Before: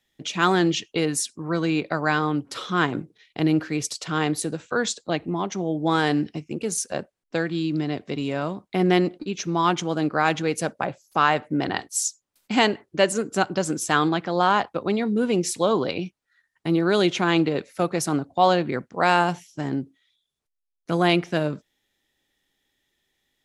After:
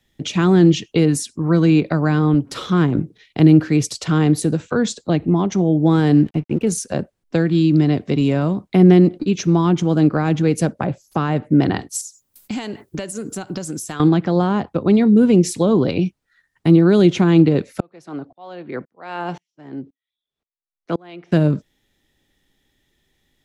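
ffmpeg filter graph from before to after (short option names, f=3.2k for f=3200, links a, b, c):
-filter_complex "[0:a]asettb=1/sr,asplit=3[a][b][c];[a]atrim=end=2.344[d];[b]atrim=start=2.34:end=2.99,asetpts=PTS-STARTPTS,afade=t=in:d=0.004:c=qsin,afade=t=out:st=0.646:d=0.004:c=qsin,aeval=exprs='if(lt(val(0),0),0.708*val(0),val(0))':c=same,highpass=56[e];[c]atrim=start=2.986[f];[d][e]acrossfade=d=0.004:c1=hsin:c2=qsin[g];[g][f]acrossfade=d=0.004:c1=qsin:c2=hsin,asettb=1/sr,asplit=3[h][i][j];[h]atrim=end=6.234[k];[i]atrim=start=6.23:end=6.67,asetpts=PTS-STARTPTS,afade=t=in:d=0.004:c=qsin,afade=t=out:st=0.436:d=0.004:c=qsin,lowpass=f=3.3k:w=0.5412,lowpass=f=3.3k:w=1.3066,aeval=exprs='sgn(val(0))*max(abs(val(0))-0.00282,0)':c=same[l];[j]atrim=start=6.666[m];[k][l]acrossfade=d=0.004:c1=hsin:c2=qsin[n];[n][m]acrossfade=d=0.004:c1=qsin:c2=hsin,asettb=1/sr,asplit=3[o][p][q];[o]atrim=end=12.014[r];[p]atrim=start=12.01:end=14,asetpts=PTS-STARTPTS,afade=t=in:d=0.004:c=qsin,afade=t=out:st=1.986:d=0.004:c=qsin,aemphasis=mode=production:type=50fm,acompressor=threshold=-33dB:ratio=6:attack=3.2:release=140:knee=1:detection=peak[s];[q]atrim=start=13.996[t];[r][s]acrossfade=d=0.004:c1=hsin:c2=qsin[u];[u][t]acrossfade=d=0.004:c1=qsin:c2=hsin,asettb=1/sr,asplit=3[v][w][x];[v]atrim=end=17.804[y];[w]atrim=start=17.8:end=21.32,asetpts=PTS-STARTPTS,afade=t=in:d=0.004:c=qsin,afade=t=out:st=3.516:d=0.004:c=qsin,acrossover=split=290 4700:gain=0.224 1 0.158[z][aa][ab];[z][aa][ab]amix=inputs=3:normalize=0,aeval=exprs='val(0)*pow(10,-35*if(lt(mod(-1.9*n/s,1),2*abs(-1.9)/1000),1-mod(-1.9*n/s,1)/(2*abs(-1.9)/1000),(mod(-1.9*n/s,1)-2*abs(-1.9)/1000)/(1-2*abs(-1.9)/1000))/20)':c=same[ac];[x]atrim=start=21.316[ad];[y][ac]acrossfade=d=0.004:c1=hsin:c2=qsin[ae];[ae][ad]acrossfade=d=0.004:c1=qsin:c2=hsin,lowshelf=f=300:g=11.5,acrossover=split=420[af][ag];[ag]acompressor=threshold=-27dB:ratio=6[ah];[af][ah]amix=inputs=2:normalize=0,volume=4.5dB"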